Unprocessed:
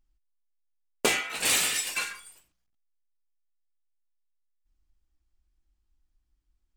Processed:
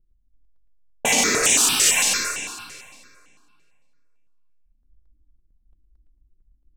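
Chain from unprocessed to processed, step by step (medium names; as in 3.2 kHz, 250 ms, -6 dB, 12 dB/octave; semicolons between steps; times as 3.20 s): fifteen-band graphic EQ 250 Hz +4 dB, 1 kHz +4 dB, 6.3 kHz +10 dB; level-controlled noise filter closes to 300 Hz, open at -23 dBFS; reverberation RT60 2.2 s, pre-delay 69 ms, DRR 0.5 dB; loudness maximiser +14 dB; stepped phaser 8.9 Hz 240–4500 Hz; trim -4.5 dB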